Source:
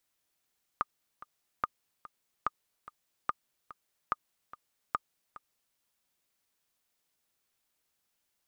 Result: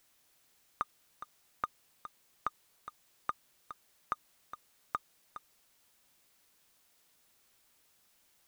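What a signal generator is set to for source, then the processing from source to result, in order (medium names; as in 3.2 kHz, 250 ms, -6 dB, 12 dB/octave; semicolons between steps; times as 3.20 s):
metronome 145 bpm, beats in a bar 2, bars 6, 1.22 kHz, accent 17.5 dB -15 dBFS
companding laws mixed up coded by mu; peak limiter -18.5 dBFS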